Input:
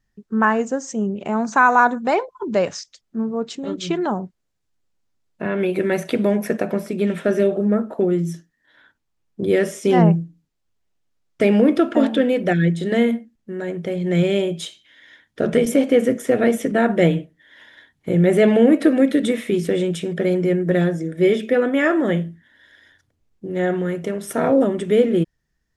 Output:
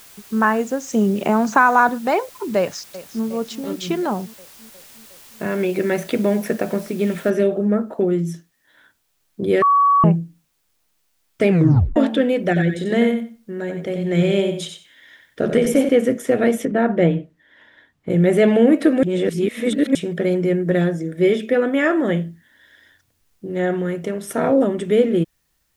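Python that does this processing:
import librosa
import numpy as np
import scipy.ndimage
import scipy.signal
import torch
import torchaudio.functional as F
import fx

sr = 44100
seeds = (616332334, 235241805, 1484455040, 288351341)

y = fx.band_squash(x, sr, depth_pct=70, at=(0.93, 1.89))
y = fx.echo_throw(y, sr, start_s=2.58, length_s=0.67, ms=360, feedback_pct=70, wet_db=-15.0)
y = fx.noise_floor_step(y, sr, seeds[0], at_s=7.3, before_db=-45, after_db=-70, tilt_db=0.0)
y = fx.echo_feedback(y, sr, ms=91, feedback_pct=17, wet_db=-7, at=(12.47, 15.89))
y = fx.lowpass(y, sr, hz=1700.0, slope=6, at=(16.65, 18.1))
y = fx.edit(y, sr, fx.bleep(start_s=9.62, length_s=0.42, hz=1130.0, db=-11.0),
    fx.tape_stop(start_s=11.49, length_s=0.47),
    fx.reverse_span(start_s=19.03, length_s=0.92), tone=tone)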